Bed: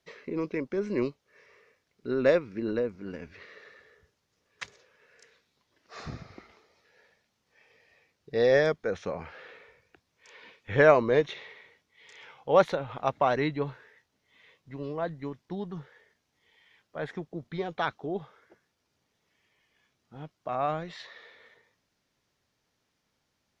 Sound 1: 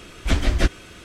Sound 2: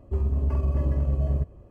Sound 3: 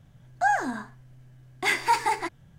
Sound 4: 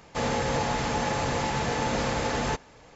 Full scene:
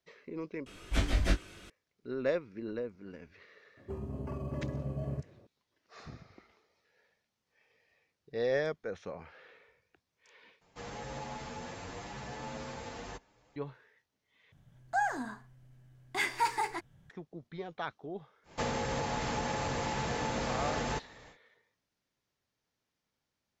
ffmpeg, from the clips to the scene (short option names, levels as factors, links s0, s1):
-filter_complex "[4:a]asplit=2[s0][s1];[0:a]volume=0.376[s2];[1:a]aecho=1:1:21|41:0.668|0.237[s3];[2:a]highpass=f=110:w=0.5412,highpass=f=110:w=1.3066[s4];[s0]asplit=2[s5][s6];[s6]adelay=8.4,afreqshift=0.85[s7];[s5][s7]amix=inputs=2:normalize=1[s8];[s1]acompressor=threshold=0.0355:ratio=6:attack=63:release=279:knee=1:detection=rms[s9];[s2]asplit=4[s10][s11][s12][s13];[s10]atrim=end=0.664[s14];[s3]atrim=end=1.04,asetpts=PTS-STARTPTS,volume=0.299[s15];[s11]atrim=start=1.696:end=10.614[s16];[s8]atrim=end=2.95,asetpts=PTS-STARTPTS,volume=0.237[s17];[s12]atrim=start=13.556:end=14.524[s18];[3:a]atrim=end=2.58,asetpts=PTS-STARTPTS,volume=0.422[s19];[s13]atrim=start=17.096[s20];[s4]atrim=end=1.7,asetpts=PTS-STARTPTS,volume=0.562,afade=t=in:d=0.004:c=hsin,afade=t=out:st=1.696:d=0.004:c=hsin,adelay=166257S[s21];[s9]atrim=end=2.95,asetpts=PTS-STARTPTS,volume=0.708,afade=t=in:d=0.1,afade=t=out:st=2.85:d=0.1,adelay=18430[s22];[s14][s15]acrossfade=d=0.004:c1=hsin:c2=hsin[s23];[s23][s16]acrossfade=d=0.004:c1=hsin:c2=hsin[s24];[s24][s17]acrossfade=d=0.004:c1=hsin:c2=hsin[s25];[s25][s18]acrossfade=d=0.004:c1=hsin:c2=hsin[s26];[s26][s19]acrossfade=d=0.004:c1=hsin:c2=hsin[s27];[s27][s20]acrossfade=d=0.004:c1=hsin:c2=hsin[s28];[s28][s21][s22]amix=inputs=3:normalize=0"